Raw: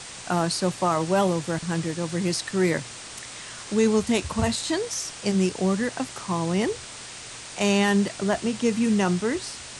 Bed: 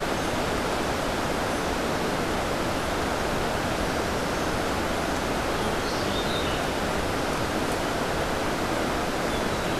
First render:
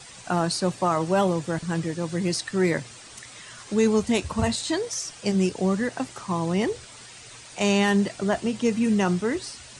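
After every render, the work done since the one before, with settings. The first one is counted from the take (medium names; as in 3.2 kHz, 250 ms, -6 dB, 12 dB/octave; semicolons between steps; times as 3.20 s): noise reduction 9 dB, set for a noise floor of -40 dBFS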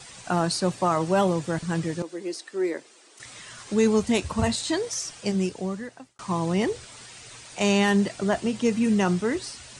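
2.02–3.20 s: ladder high-pass 300 Hz, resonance 50%; 5.09–6.19 s: fade out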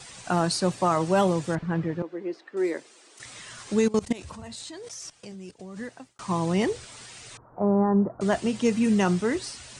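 1.55–2.57 s: low-pass 1.9 kHz; 3.79–5.77 s: level held to a coarse grid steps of 20 dB; 7.37–8.21 s: steep low-pass 1.3 kHz 48 dB/octave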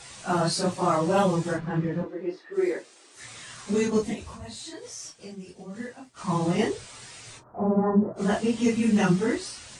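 phase randomisation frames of 100 ms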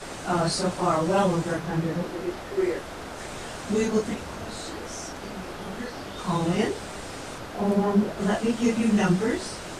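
add bed -11 dB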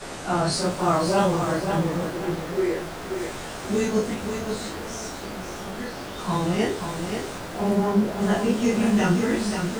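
spectral sustain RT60 0.34 s; bit-crushed delay 531 ms, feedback 35%, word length 7-bit, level -6 dB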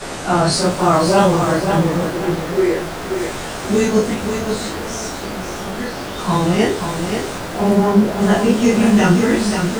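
trim +8 dB; peak limiter -2 dBFS, peak gain reduction 1.5 dB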